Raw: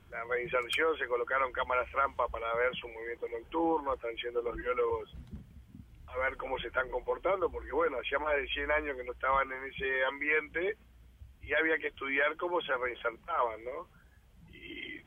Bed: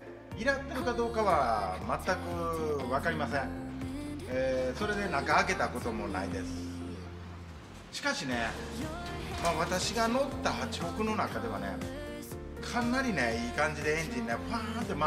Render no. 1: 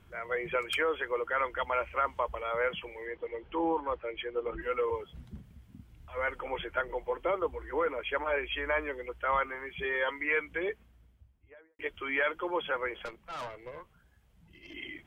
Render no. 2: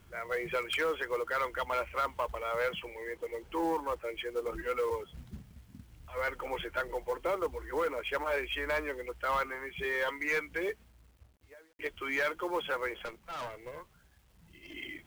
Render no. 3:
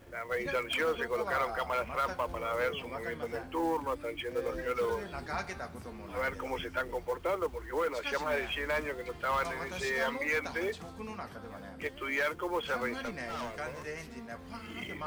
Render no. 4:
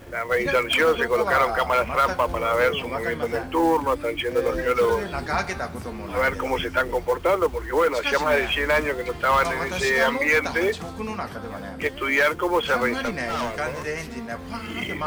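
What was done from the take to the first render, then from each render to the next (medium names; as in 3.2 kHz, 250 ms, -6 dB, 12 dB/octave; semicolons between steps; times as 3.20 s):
3.06–4.62 s: low-pass 4.4 kHz 24 dB/octave; 10.56–11.79 s: studio fade out; 13.05–14.74 s: valve stage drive 36 dB, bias 0.7
saturation -23 dBFS, distortion -17 dB; companded quantiser 6-bit
add bed -10.5 dB
trim +11.5 dB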